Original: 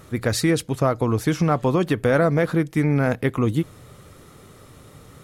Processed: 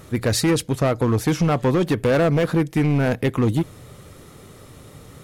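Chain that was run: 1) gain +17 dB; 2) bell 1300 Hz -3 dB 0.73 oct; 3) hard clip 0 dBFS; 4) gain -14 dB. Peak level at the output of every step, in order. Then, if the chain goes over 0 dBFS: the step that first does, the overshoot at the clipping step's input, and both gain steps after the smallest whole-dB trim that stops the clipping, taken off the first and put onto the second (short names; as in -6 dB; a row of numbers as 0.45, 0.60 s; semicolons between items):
+8.5, +8.5, 0.0, -14.0 dBFS; step 1, 8.5 dB; step 1 +8 dB, step 4 -5 dB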